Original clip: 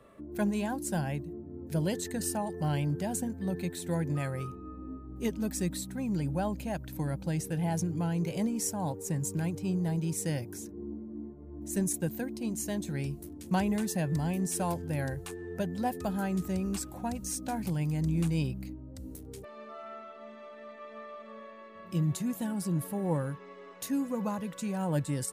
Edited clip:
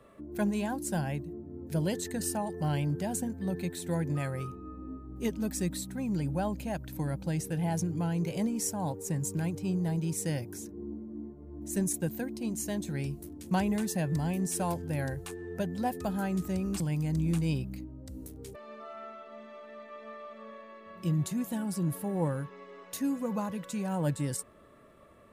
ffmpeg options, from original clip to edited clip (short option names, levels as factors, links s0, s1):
-filter_complex "[0:a]asplit=2[s0][s1];[s0]atrim=end=16.802[s2];[s1]atrim=start=17.688[s3];[s2][s3]acrossfade=d=0.004:c1=hsin:c2=hsin"